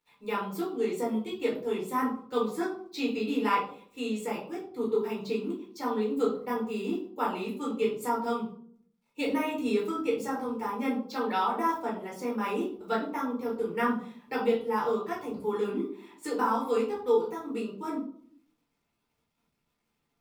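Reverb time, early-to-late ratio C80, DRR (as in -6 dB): 0.55 s, 10.0 dB, -5.5 dB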